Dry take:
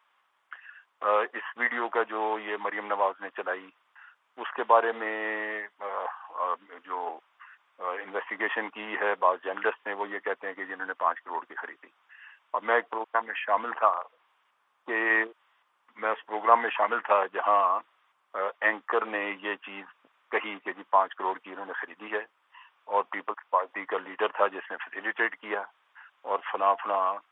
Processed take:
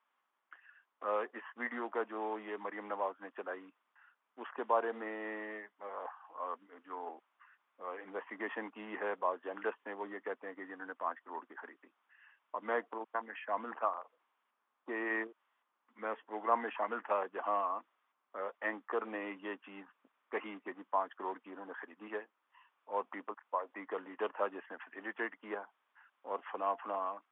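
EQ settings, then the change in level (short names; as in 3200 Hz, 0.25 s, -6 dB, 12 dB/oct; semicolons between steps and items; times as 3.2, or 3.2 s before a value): band-pass 230 Hz, Q 2.2; air absorption 97 m; tilt +5 dB/oct; +8.5 dB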